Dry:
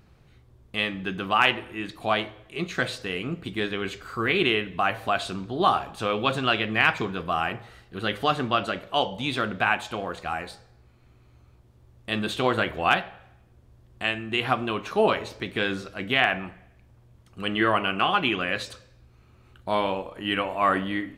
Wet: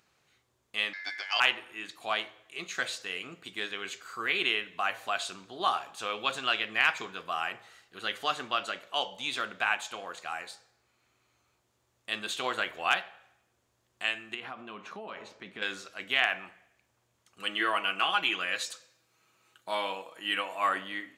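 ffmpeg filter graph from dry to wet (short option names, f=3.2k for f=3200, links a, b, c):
-filter_complex "[0:a]asettb=1/sr,asplit=3[a][b][c];[a]atrim=end=0.934[d];[b]atrim=start=0.93:end=1.4,asetpts=PTS-STARTPTS,afade=t=in:d=0.004:c=qsin,afade=t=out:st=0.466:d=0.004:c=qsin,lowpass=f=9.4k:w=0.5412,lowpass=f=9.4k:w=1.3066,aeval=exprs='val(0)*sin(2*PI*1900*n/s)':c=same[e];[c]atrim=start=1.396[f];[d][e]acrossfade=d=0.004:c1=hsin:c2=qsin[g];[g][f]acrossfade=d=0.004:c1=qsin:c2=hsin,asettb=1/sr,asplit=3[h][i][j];[h]atrim=end=14.344[k];[i]atrim=start=14.34:end=15.62,asetpts=PTS-STARTPTS,afade=t=in:d=0.004:c=qsin,afade=t=out:st=1.276:d=0.004:c=qsin,lowpass=f=1.5k:p=1,acompressor=threshold=-29dB:ratio=5:attack=3.2:release=140:knee=1:detection=peak,equalizer=f=200:t=o:w=0.44:g=9.5[l];[j]atrim=start=15.616[m];[k][l]acrossfade=d=0.004:c1=hsin:c2=qsin[n];[n][m]acrossfade=d=0.004:c1=qsin:c2=hsin,asettb=1/sr,asplit=3[o][p][q];[o]atrim=end=17.404[r];[p]atrim=start=17.4:end=20.69,asetpts=PTS-STARTPTS,afade=t=in:d=0.004:c=qsin,afade=t=out:st=3.286:d=0.004:c=qsin,highpass=110,highshelf=f=7.6k:g=5.5,aecho=1:1:6.2:0.41,atrim=end_sample=145089[s];[q]atrim=start=20.686[t];[r][s]acrossfade=d=0.004:c1=hsin:c2=qsin[u];[u][t]acrossfade=d=0.004:c1=qsin:c2=hsin,highpass=f=1.3k:p=1,equalizer=f=6.9k:t=o:w=0.46:g=7,volume=-2.5dB"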